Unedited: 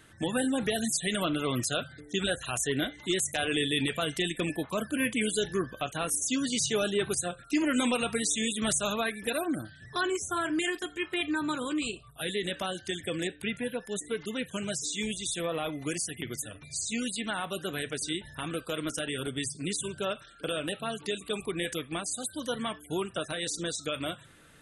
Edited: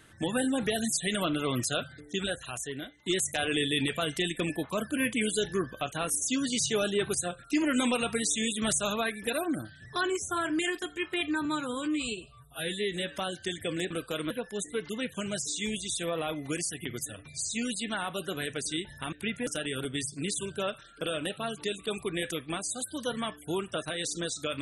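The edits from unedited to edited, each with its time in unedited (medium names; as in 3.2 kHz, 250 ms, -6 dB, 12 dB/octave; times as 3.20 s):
1.91–3.06 s: fade out, to -16.5 dB
11.45–12.60 s: stretch 1.5×
13.33–13.67 s: swap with 18.49–18.89 s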